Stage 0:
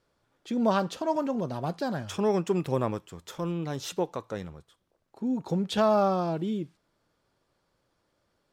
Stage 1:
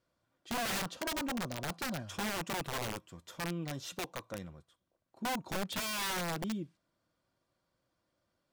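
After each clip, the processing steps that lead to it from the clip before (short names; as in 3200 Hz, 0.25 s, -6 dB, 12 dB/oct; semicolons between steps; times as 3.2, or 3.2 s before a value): notch comb 430 Hz; wrapped overs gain 24.5 dB; gain -6 dB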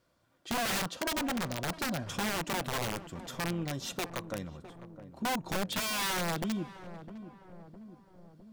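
in parallel at +1 dB: compressor, threshold -46 dBFS, peak gain reduction 12 dB; on the sum: darkening echo 0.658 s, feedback 63%, low-pass 890 Hz, level -12 dB; gain +1 dB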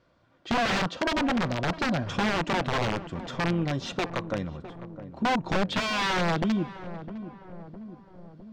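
air absorption 160 m; gain +8 dB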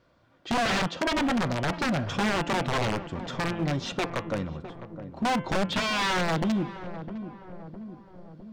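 de-hum 171.9 Hz, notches 20; overloaded stage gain 24 dB; gain +1.5 dB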